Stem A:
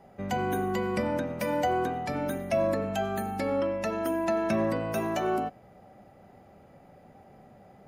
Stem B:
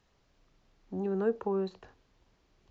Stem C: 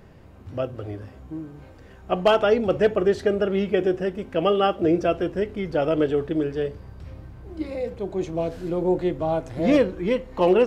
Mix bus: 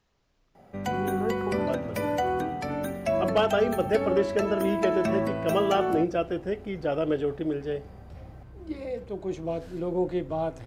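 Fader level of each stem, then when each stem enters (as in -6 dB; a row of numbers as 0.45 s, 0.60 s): 0.0 dB, -2.0 dB, -5.0 dB; 0.55 s, 0.00 s, 1.10 s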